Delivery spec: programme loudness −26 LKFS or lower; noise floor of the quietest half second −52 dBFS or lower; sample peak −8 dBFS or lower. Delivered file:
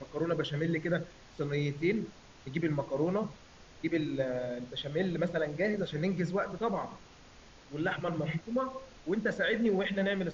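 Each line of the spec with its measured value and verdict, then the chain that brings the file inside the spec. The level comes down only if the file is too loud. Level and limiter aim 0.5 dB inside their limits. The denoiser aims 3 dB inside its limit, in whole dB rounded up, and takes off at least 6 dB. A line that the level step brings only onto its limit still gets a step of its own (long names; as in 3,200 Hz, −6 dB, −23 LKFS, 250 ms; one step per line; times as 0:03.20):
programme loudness −33.0 LKFS: in spec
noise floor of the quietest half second −55 dBFS: in spec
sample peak −17.5 dBFS: in spec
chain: no processing needed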